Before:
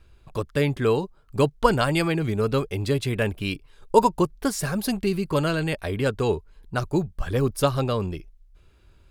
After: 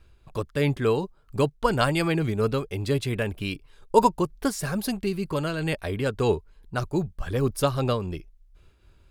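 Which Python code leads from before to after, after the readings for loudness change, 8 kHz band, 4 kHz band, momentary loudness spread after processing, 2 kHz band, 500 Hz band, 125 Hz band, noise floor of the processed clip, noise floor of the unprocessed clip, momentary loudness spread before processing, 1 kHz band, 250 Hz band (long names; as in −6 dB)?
−1.5 dB, −2.0 dB, −1.5 dB, 10 LU, −2.0 dB, −2.0 dB, −1.5 dB, −58 dBFS, −56 dBFS, 10 LU, −1.5 dB, −2.0 dB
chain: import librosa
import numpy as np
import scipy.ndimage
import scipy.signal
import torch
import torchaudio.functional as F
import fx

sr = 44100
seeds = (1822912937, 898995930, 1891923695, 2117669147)

y = fx.am_noise(x, sr, seeds[0], hz=5.7, depth_pct=60)
y = y * 10.0 ** (1.5 / 20.0)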